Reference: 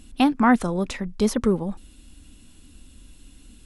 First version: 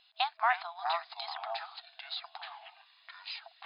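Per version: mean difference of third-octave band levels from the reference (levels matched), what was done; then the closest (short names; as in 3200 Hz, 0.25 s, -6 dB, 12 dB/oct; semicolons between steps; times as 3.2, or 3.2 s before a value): 16.0 dB: echoes that change speed 0.2 s, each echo -7 st, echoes 3; FFT band-pass 650–5100 Hz; bell 3900 Hz +9 dB 0.32 oct; gain -7 dB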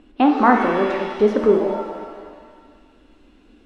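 8.5 dB: LPF 1800 Hz 12 dB/oct; resonant low shelf 220 Hz -13.5 dB, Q 1.5; shimmer reverb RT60 1.6 s, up +7 st, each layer -8 dB, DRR 2.5 dB; gain +4 dB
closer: second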